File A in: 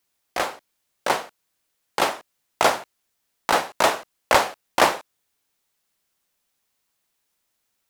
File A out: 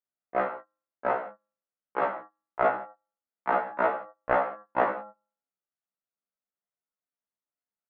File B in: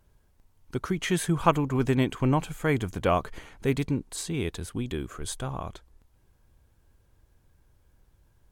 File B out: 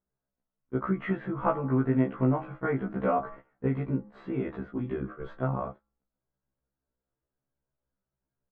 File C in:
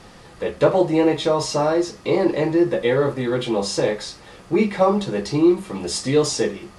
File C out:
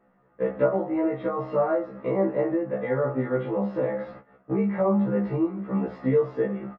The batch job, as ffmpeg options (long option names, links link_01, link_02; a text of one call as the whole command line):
ffmpeg -i in.wav -filter_complex "[0:a]lowshelf=frequency=130:width_type=q:width=1.5:gain=-11.5,bandreject=frequency=104.7:width_type=h:width=4,bandreject=frequency=209.4:width_type=h:width=4,bandreject=frequency=314.1:width_type=h:width=4,bandreject=frequency=418.8:width_type=h:width=4,bandreject=frequency=523.5:width_type=h:width=4,bandreject=frequency=628.2:width_type=h:width=4,bandreject=frequency=732.9:width_type=h:width=4,bandreject=frequency=837.6:width_type=h:width=4,bandreject=frequency=942.3:width_type=h:width=4,bandreject=frequency=1047:width_type=h:width=4,bandreject=frequency=1151.7:width_type=h:width=4,bandreject=frequency=1256.4:width_type=h:width=4,bandreject=frequency=1361.1:width_type=h:width=4,bandreject=frequency=1465.8:width_type=h:width=4,bandreject=frequency=1570.5:width_type=h:width=4,bandreject=frequency=1675.2:width_type=h:width=4,bandreject=frequency=1779.9:width_type=h:width=4,bandreject=frequency=1884.6:width_type=h:width=4,agate=range=-22dB:threshold=-39dB:ratio=16:detection=peak,acompressor=threshold=-29dB:ratio=2.5,lowpass=frequency=1700:width=0.5412,lowpass=frequency=1700:width=1.3066,bandreject=frequency=790:width=21,asplit=2[link_01][link_02];[link_02]adelay=14,volume=-7dB[link_03];[link_01][link_03]amix=inputs=2:normalize=0,afftfilt=real='re*1.73*eq(mod(b,3),0)':imag='im*1.73*eq(mod(b,3),0)':win_size=2048:overlap=0.75,volume=6dB" out.wav